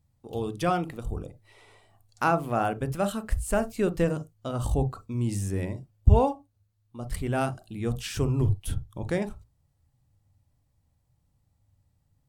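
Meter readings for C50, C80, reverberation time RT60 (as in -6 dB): 21.0 dB, 32.5 dB, no single decay rate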